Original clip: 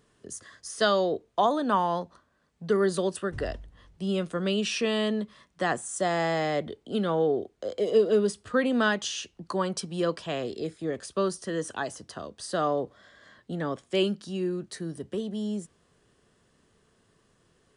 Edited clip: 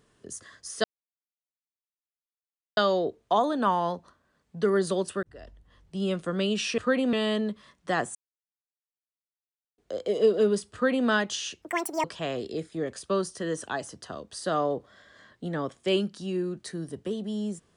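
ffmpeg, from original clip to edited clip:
-filter_complex "[0:a]asplit=9[a][b][c][d][e][f][g][h][i];[a]atrim=end=0.84,asetpts=PTS-STARTPTS,afade=t=out:st=0.836:d=0.004:c=hsin,apad=pad_dur=1.93[j];[b]atrim=start=0.84:end=3.3,asetpts=PTS-STARTPTS,afade=t=in:d=0.004:c=hsin,afade=t=out:st=2.456:d=0.004:c=hsin[k];[c]atrim=start=3.3:end=4.852,asetpts=PTS-STARTPTS,afade=t=in:d=0.86[l];[d]atrim=start=8.448:end=8.802[m];[e]atrim=start=4.848:end=5.87,asetpts=PTS-STARTPTS,afade=t=out:st=1.018:d=0.004:c=hsin[n];[f]atrim=start=5.87:end=7.5,asetpts=PTS-STARTPTS,volume=0[o];[g]atrim=start=7.5:end=9.344,asetpts=PTS-STARTPTS,afade=t=in:d=0.004:c=hsin[p];[h]atrim=start=9.34:end=10.11,asetpts=PTS-STARTPTS,asetrate=80703,aresample=44100[q];[i]atrim=start=10.106[r];[j][k][l]concat=n=3:v=0:a=1[s];[s][m]acrossfade=d=0.004:c1=hsin:c2=hsin[t];[n][o][p]concat=n=3:v=0:a=1[u];[t][u]acrossfade=d=0.004:c1=hsin:c2=hsin[v];[v][q]acrossfade=d=0.004:c1=hsin:c2=hsin[w];[w][r]acrossfade=d=0.004:c1=hsin:c2=hsin"

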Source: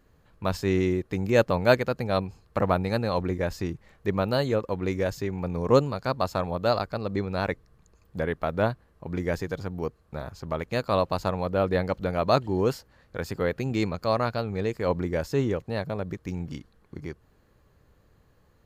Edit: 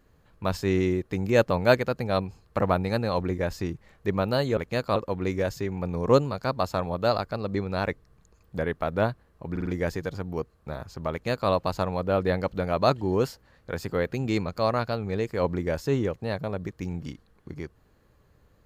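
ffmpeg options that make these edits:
-filter_complex "[0:a]asplit=6[a][b][c][d][e][f];[a]atrim=end=4.572[g];[b]atrim=start=10.568:end=10.962[h];[c]atrim=start=4.568:end=9.172[i];[d]atrim=start=9.118:end=9.172[j];[e]atrim=start=9.118:end=9.172[k];[f]atrim=start=9.118[l];[g][h]acrossfade=d=0.004:c1=hsin:c2=hsin[m];[m][i]acrossfade=d=0.004:c1=hsin:c2=hsin[n];[n][j]acrossfade=d=0.004:c1=hsin:c2=hsin[o];[o][k]acrossfade=d=0.004:c1=hsin:c2=hsin[p];[p][l]acrossfade=d=0.004:c1=hsin:c2=hsin"

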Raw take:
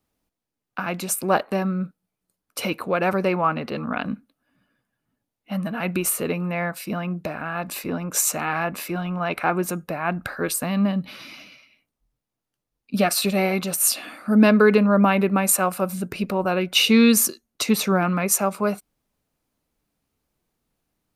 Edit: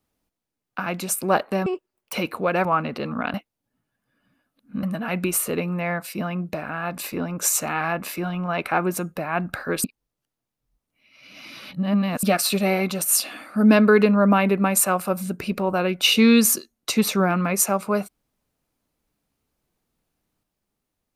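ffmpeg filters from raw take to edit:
-filter_complex "[0:a]asplit=8[a][b][c][d][e][f][g][h];[a]atrim=end=1.664[i];[b]atrim=start=1.66:end=2.6,asetpts=PTS-STARTPTS,asetrate=88200,aresample=44100[j];[c]atrim=start=2.596:end=3.122[k];[d]atrim=start=3.368:end=4.062[l];[e]atrim=start=4.058:end=5.552,asetpts=PTS-STARTPTS,areverse[m];[f]atrim=start=5.548:end=10.562[n];[g]atrim=start=10.558:end=12.952,asetpts=PTS-STARTPTS,areverse[o];[h]atrim=start=12.948[p];[i][j]acrossfade=d=0.004:c1=hsin:c2=hsin[q];[q][k]acrossfade=d=0.004:c1=hsin:c2=hsin[r];[r][l]acrossfade=d=0.004:c1=hsin:c2=hsin[s];[s][m]acrossfade=d=0.004:c1=hsin:c2=hsin[t];[t][n]acrossfade=d=0.004:c1=hsin:c2=hsin[u];[u][o]acrossfade=d=0.004:c1=hsin:c2=hsin[v];[v][p]acrossfade=d=0.004:c1=hsin:c2=hsin"

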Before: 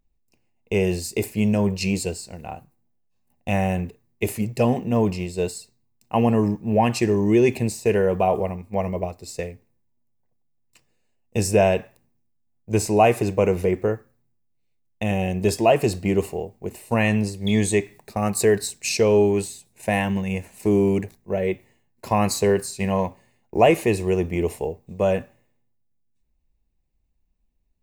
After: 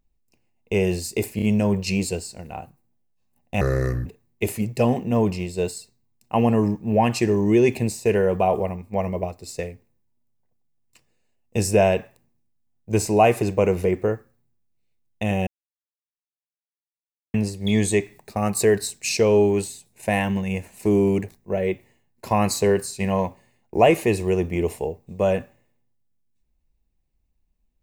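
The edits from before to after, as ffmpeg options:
-filter_complex "[0:a]asplit=7[a][b][c][d][e][f][g];[a]atrim=end=1.392[h];[b]atrim=start=1.358:end=1.392[i];[c]atrim=start=1.358:end=3.554[j];[d]atrim=start=3.55:end=3.86,asetpts=PTS-STARTPTS,asetrate=30429,aresample=44100,atrim=end_sample=19813,asetpts=PTS-STARTPTS[k];[e]atrim=start=3.856:end=15.27,asetpts=PTS-STARTPTS,afade=t=out:st=11.41:d=0.004:c=hsin[l];[f]atrim=start=15.27:end=17.14,asetpts=PTS-STARTPTS,volume=0[m];[g]atrim=start=17.14,asetpts=PTS-STARTPTS,afade=t=in:d=0.004:c=hsin[n];[h][i]acrossfade=d=0.004:c1=hsin:c2=hsin[o];[o][j]acrossfade=d=0.004:c1=hsin:c2=hsin[p];[p][k]acrossfade=d=0.004:c1=hsin:c2=hsin[q];[l][m][n]concat=n=3:v=0:a=1[r];[q][r]acrossfade=d=0.004:c1=hsin:c2=hsin"

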